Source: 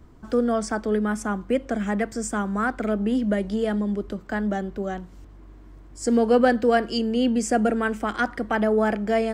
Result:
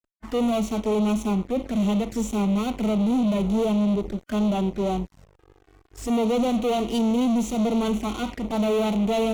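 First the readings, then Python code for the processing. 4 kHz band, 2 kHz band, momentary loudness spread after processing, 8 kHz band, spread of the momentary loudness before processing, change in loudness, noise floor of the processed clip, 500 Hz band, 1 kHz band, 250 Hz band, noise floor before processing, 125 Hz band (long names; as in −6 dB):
+1.5 dB, −10.5 dB, 5 LU, −2.5 dB, 8 LU, 0.0 dB, −60 dBFS, −2.0 dB, −3.0 dB, +2.0 dB, −46 dBFS, +4.0 dB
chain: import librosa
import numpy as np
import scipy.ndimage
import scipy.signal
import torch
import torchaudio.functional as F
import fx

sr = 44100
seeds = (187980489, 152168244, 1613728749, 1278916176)

y = fx.fuzz(x, sr, gain_db=35.0, gate_db=-41.0)
y = fx.env_flanger(y, sr, rest_ms=3.2, full_db=-15.0)
y = fx.hpss(y, sr, part='percussive', gain_db=-13)
y = y * 10.0 ** (-6.0 / 20.0)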